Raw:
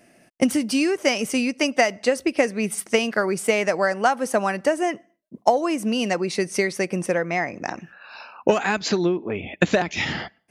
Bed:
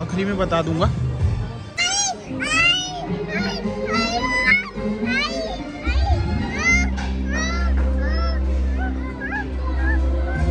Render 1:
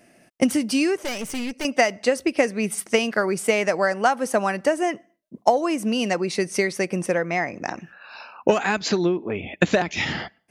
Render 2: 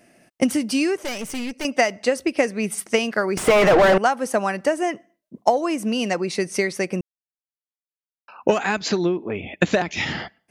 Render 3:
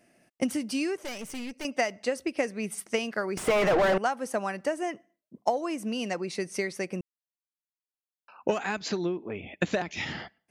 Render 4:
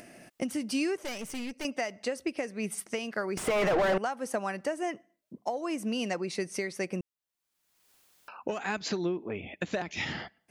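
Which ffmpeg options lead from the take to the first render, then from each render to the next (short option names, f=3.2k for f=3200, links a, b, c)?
-filter_complex "[0:a]asettb=1/sr,asplit=3[a][b][c];[a]atrim=end=1.044[d];[b]atrim=start=1.04:end=1.65,asetpts=PTS-STARTPTS,afade=t=in:d=0.004:c=qsin,afade=t=out:st=0.606:d=0.004:c=qsin,aeval=exprs='(tanh(17.8*val(0)+0.55)-tanh(0.55))/17.8':c=same[e];[c]atrim=start=1.646[f];[d][e]acrossfade=d=0.004:c1=hsin:c2=qsin[g];[g][f]acrossfade=d=0.004:c1=qsin:c2=hsin"
-filter_complex "[0:a]asettb=1/sr,asplit=3[a][b][c];[a]atrim=end=3.374[d];[b]atrim=start=3.37:end=3.98,asetpts=PTS-STARTPTS,afade=t=in:d=0.004:c=qsin,afade=t=out:st=0.606:d=0.004:c=qsin,asplit=2[e][f];[f]highpass=f=720:p=1,volume=38dB,asoftclip=type=tanh:threshold=-5.5dB[g];[e][g]amix=inputs=2:normalize=0,lowpass=f=1k:p=1,volume=-6dB[h];[c]atrim=start=3.976[i];[d][h]acrossfade=d=0.004:c1=hsin:c2=qsin[j];[j][i]acrossfade=d=0.004:c1=qsin:c2=hsin,asplit=3[k][l][m];[k]atrim=end=7.01,asetpts=PTS-STARTPTS,afade=t=out:st=7.006:d=0.004:c=hsin[n];[l]atrim=start=7.01:end=8.28,asetpts=PTS-STARTPTS,volume=0[o];[m]atrim=start=8.28,asetpts=PTS-STARTPTS,afade=t=in:d=0.004:c=hsin[p];[n][o][p]concat=n=3:v=0:a=1"
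-af "volume=-8.5dB"
-af "alimiter=limit=-20.5dB:level=0:latency=1:release=263,acompressor=mode=upward:threshold=-40dB:ratio=2.5"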